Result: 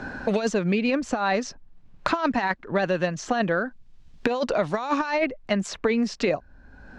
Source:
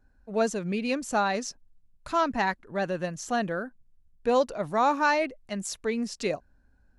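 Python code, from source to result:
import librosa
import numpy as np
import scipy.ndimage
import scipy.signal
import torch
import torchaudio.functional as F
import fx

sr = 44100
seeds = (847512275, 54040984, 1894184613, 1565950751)

y = fx.low_shelf(x, sr, hz=500.0, db=-4.5)
y = fx.over_compress(y, sr, threshold_db=-29.0, ratio=-0.5)
y = fx.air_absorb(y, sr, metres=150.0)
y = fx.band_squash(y, sr, depth_pct=100)
y = y * librosa.db_to_amplitude(7.5)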